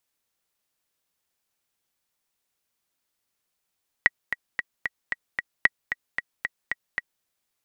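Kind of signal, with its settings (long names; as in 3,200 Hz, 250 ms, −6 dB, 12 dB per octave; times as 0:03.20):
click track 226 BPM, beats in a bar 6, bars 2, 1,920 Hz, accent 10 dB −3 dBFS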